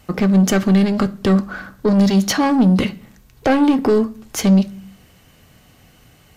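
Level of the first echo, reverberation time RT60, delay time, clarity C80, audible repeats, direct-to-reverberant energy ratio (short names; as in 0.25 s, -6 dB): none, 0.45 s, none, 24.0 dB, none, 8.5 dB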